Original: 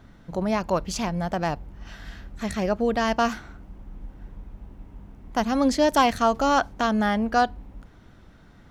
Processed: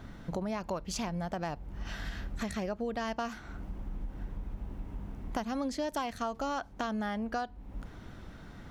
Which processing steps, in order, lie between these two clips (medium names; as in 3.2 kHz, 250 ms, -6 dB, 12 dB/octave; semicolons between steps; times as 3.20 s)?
compression 5:1, threshold -37 dBFS, peak gain reduction 20 dB; trim +3.5 dB